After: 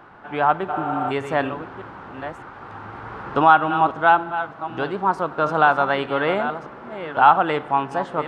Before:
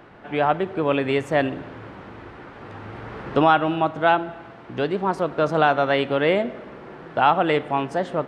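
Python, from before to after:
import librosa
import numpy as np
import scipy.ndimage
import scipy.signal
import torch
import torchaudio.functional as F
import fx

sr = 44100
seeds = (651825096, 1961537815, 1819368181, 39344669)

y = fx.reverse_delay(x, sr, ms=606, wet_db=-10.5)
y = fx.band_shelf(y, sr, hz=1100.0, db=8.0, octaves=1.2)
y = fx.spec_repair(y, sr, seeds[0], start_s=0.75, length_s=0.33, low_hz=370.0, high_hz=7300.0, source='before')
y = F.gain(torch.from_numpy(y), -3.0).numpy()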